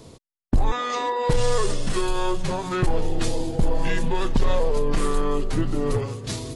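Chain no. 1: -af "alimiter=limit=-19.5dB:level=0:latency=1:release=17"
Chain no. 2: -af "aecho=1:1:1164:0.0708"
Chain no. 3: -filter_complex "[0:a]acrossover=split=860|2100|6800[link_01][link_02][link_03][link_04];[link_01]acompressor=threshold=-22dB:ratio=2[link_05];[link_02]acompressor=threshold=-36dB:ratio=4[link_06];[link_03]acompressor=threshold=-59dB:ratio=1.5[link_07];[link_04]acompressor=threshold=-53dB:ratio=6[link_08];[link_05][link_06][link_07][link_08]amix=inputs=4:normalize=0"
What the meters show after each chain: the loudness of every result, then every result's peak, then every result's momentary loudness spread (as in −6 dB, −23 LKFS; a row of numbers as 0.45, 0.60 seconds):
−30.0, −26.0, −29.0 LKFS; −19.5, −10.5, −13.0 dBFS; 4, 4, 3 LU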